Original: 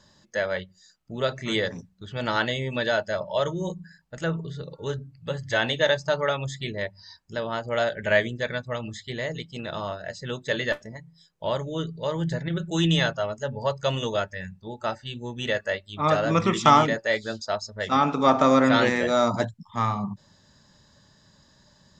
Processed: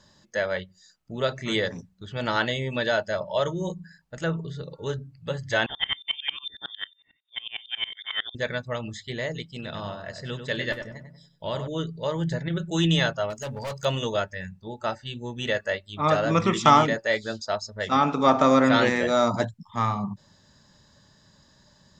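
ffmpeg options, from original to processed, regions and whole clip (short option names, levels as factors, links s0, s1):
-filter_complex "[0:a]asettb=1/sr,asplit=3[s0][s1][s2];[s0]atrim=end=5.664[s3];[s1]atrim=start=5.66:end=8.35,asetpts=PTS-STARTPTS,afade=t=in:d=0.004:c=qsin,afade=t=out:st=2.686:d=0.004:c=qsin,asoftclip=type=hard:threshold=0.168,lowpass=f=3100:t=q:w=0.5098,lowpass=f=3100:t=q:w=0.6013,lowpass=f=3100:t=q:w=0.9,lowpass=f=3100:t=q:w=2.563,afreqshift=-3700,aeval=exprs='val(0)*pow(10,-25*if(lt(mod(-11*n/s,1),2*abs(-11)/1000),1-mod(-11*n/s,1)/(2*abs(-11)/1000),(mod(-11*n/s,1)-2*abs(-11)/1000)/(1-2*abs(-11)/1000))/20)':c=same[s4];[s2]atrim=start=8.346[s5];[s3][s4]acrossfade=d=0.004:c1=hsin:c2=qsin[s6];[s6][s5]acrossfade=d=0.004:c1=qsin:c2=hsin,asettb=1/sr,asplit=3[s7][s8][s9];[s7]atrim=end=9.484[s10];[s8]atrim=start=9.48:end=11.68,asetpts=PTS-STARTPTS,afade=t=in:d=0.004:c=qsin,afade=t=out:st=2.196:d=0.004:c=qsin,equalizer=f=730:w=0.52:g=-4.5,bandreject=f=6400:w=9,asplit=2[s11][s12];[s12]adelay=96,lowpass=f=2000:p=1,volume=0.473,asplit=2[s13][s14];[s14]adelay=96,lowpass=f=2000:p=1,volume=0.39,asplit=2[s15][s16];[s16]adelay=96,lowpass=f=2000:p=1,volume=0.39,asplit=2[s17][s18];[s18]adelay=96,lowpass=f=2000:p=1,volume=0.39,asplit=2[s19][s20];[s20]adelay=96,lowpass=f=2000:p=1,volume=0.39[s21];[s11][s13][s15][s17][s19][s21]amix=inputs=6:normalize=0,atrim=end_sample=97020[s22];[s9]atrim=start=11.676[s23];[s10][s22]acrossfade=d=0.004:c1=hsin:c2=qsin[s24];[s24][s23]acrossfade=d=0.004:c1=qsin:c2=hsin,asettb=1/sr,asplit=3[s25][s26][s27];[s25]atrim=end=13.304[s28];[s26]atrim=start=13.3:end=13.85,asetpts=PTS-STARTPTS,afade=t=in:d=0.004:c=qsin,afade=t=out:st=0.546:d=0.004:c=qsin,highshelf=f=3700:g=10.5,asoftclip=type=hard:threshold=0.0335[s29];[s27]atrim=start=13.846[s30];[s28][s29]acrossfade=d=0.004:c1=hsin:c2=qsin[s31];[s31][s30]acrossfade=d=0.004:c1=qsin:c2=hsin"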